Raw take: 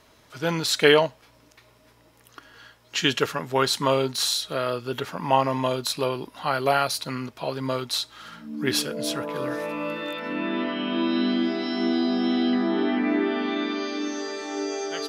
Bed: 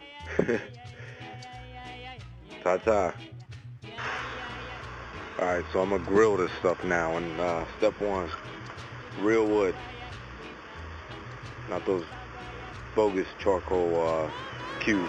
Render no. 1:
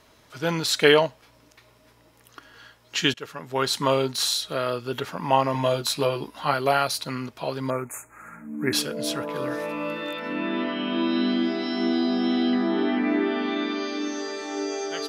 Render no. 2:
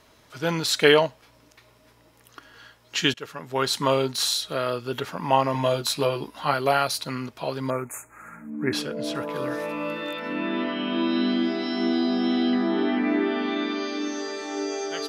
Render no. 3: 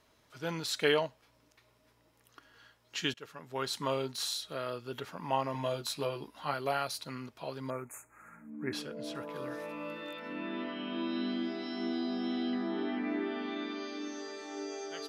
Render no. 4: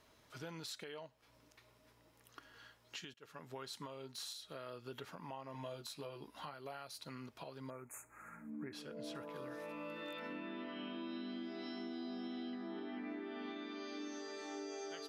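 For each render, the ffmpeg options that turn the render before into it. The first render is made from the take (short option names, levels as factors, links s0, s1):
-filter_complex "[0:a]asettb=1/sr,asplit=3[s0][s1][s2];[s0]atrim=end=5.534[s3];[s1]atrim=start=5.53:end=6.54,asetpts=PTS-STARTPTS,afade=t=in:d=0.004:c=qsin,afade=t=out:st=1.006:d=0.004:c=qsin,asplit=2[s4][s5];[s5]adelay=14,volume=0.668[s6];[s4][s6]amix=inputs=2:normalize=0,atrim=end_sample=44541[s7];[s2]atrim=start=6.536[s8];[s3][s7]acrossfade=d=0.004:c1=hsin:c2=qsin[s9];[s9][s8]acrossfade=d=0.004:c1=qsin:c2=hsin,asettb=1/sr,asplit=3[s10][s11][s12];[s10]atrim=end=7.704[s13];[s11]atrim=start=7.7:end=8.73,asetpts=PTS-STARTPTS,afade=t=in:d=0.004:c=qsin,afade=t=out:st=1.026:d=0.004:c=qsin,asuperstop=centerf=4100:order=20:qfactor=1[s14];[s12]atrim=start=8.726[s15];[s13][s14]acrossfade=d=0.004:c1=hsin:c2=qsin[s16];[s16][s15]acrossfade=d=0.004:c1=qsin:c2=hsin,asplit=2[s17][s18];[s17]atrim=end=3.14,asetpts=PTS-STARTPTS,afade=t=out:st=3.136:d=0.004:c=hsin:silence=0.0944061[s19];[s18]atrim=start=3.14,asetpts=PTS-STARTPTS,afade=t=in:d=0.66:silence=0.0944061[s20];[s19][s20]concat=n=2:v=0:a=1"
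-filter_complex "[0:a]asettb=1/sr,asplit=3[s0][s1][s2];[s0]atrim=end=8.504[s3];[s1]atrim=start=8.5:end=9.15,asetpts=PTS-STARTPTS,afade=t=in:d=0.004:c=qsin,afade=t=out:st=0.646:d=0.004:c=qsin,lowpass=f=2800:p=1[s4];[s2]atrim=start=9.146[s5];[s3][s4]acrossfade=d=0.004:c1=hsin:c2=qsin[s6];[s6][s5]acrossfade=d=0.004:c1=qsin:c2=hsin"
-af "volume=0.282"
-af "acompressor=threshold=0.00708:ratio=3,alimiter=level_in=3.98:limit=0.0631:level=0:latency=1:release=480,volume=0.251"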